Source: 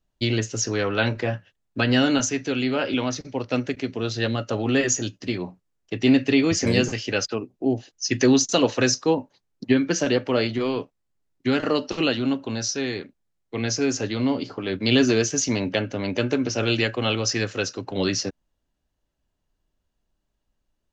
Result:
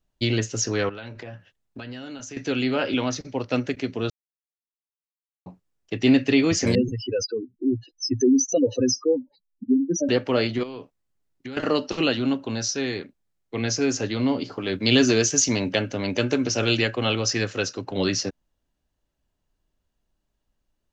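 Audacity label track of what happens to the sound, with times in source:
0.890000	2.370000	downward compressor, threshold −35 dBFS
4.100000	5.460000	silence
6.750000	10.090000	expanding power law on the bin magnitudes exponent 3.6
10.630000	11.570000	downward compressor, threshold −33 dBFS
14.520000	16.780000	high-shelf EQ 5,200 Hz +7.5 dB

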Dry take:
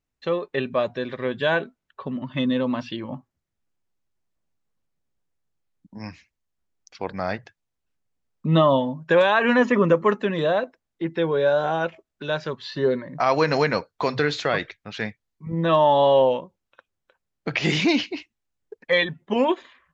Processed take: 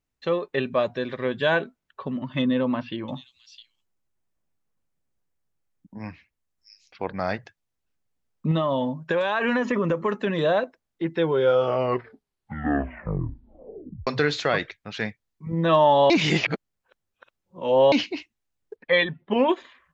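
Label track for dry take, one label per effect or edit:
2.420000	7.190000	multiband delay without the direct sound lows, highs 660 ms, split 4,000 Hz
8.510000	10.270000	downward compressor, threshold −19 dBFS
11.210000	11.210000	tape stop 2.86 s
16.100000	17.920000	reverse
18.760000	19.490000	low-pass filter 4,000 Hz 24 dB per octave

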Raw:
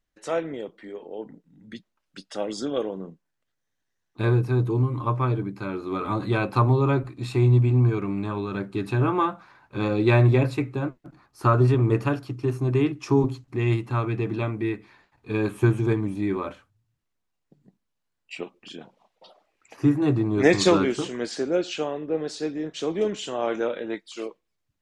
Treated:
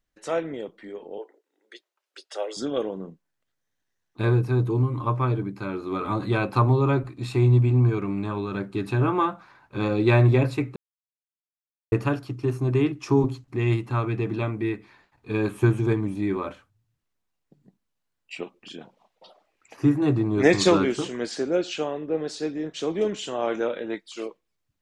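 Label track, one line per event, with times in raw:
1.180000	2.570000	Chebyshev high-pass filter 370 Hz, order 5
10.760000	11.920000	silence

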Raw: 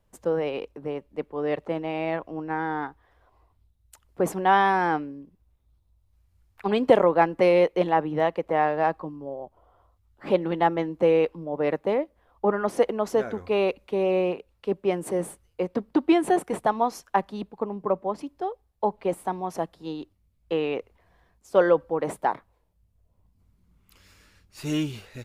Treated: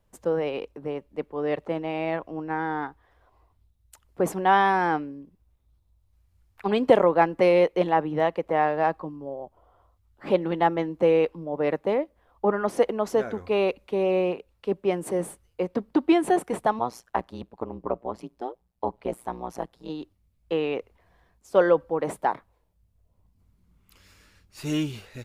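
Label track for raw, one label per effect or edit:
16.790000	19.900000	amplitude modulation modulator 120 Hz, depth 95%

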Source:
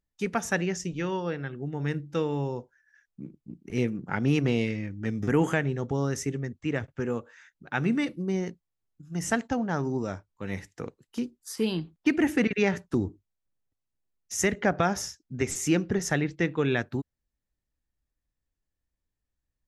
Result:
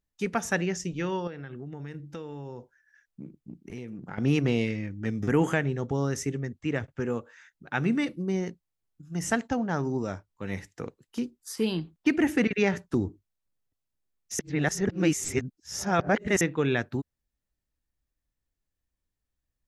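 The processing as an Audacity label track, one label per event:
1.270000	4.180000	downward compressor, threshold −35 dBFS
14.390000	16.410000	reverse

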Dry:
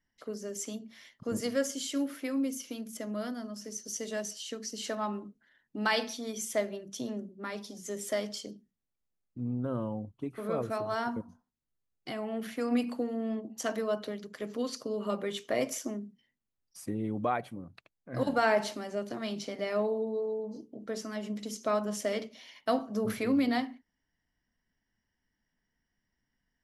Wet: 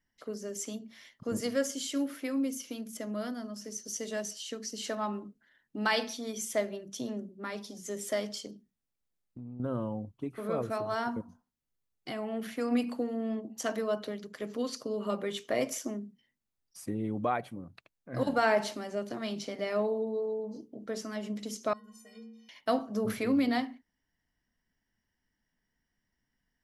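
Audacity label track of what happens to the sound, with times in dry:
8.460000	9.600000	downward compressor, threshold −40 dBFS
21.730000	22.490000	stiff-string resonator 220 Hz, decay 0.75 s, inharmonicity 0.03

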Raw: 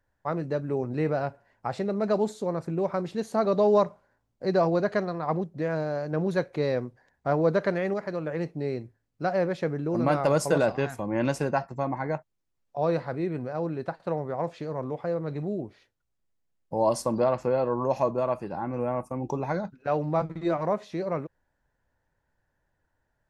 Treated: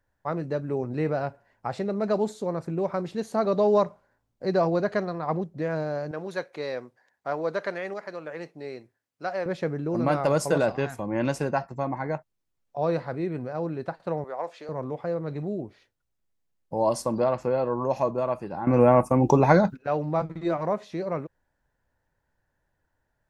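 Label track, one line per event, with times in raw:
6.110000	9.460000	high-pass filter 740 Hz 6 dB per octave
14.240000	14.690000	high-pass filter 510 Hz
18.670000	19.770000	clip gain +11.5 dB

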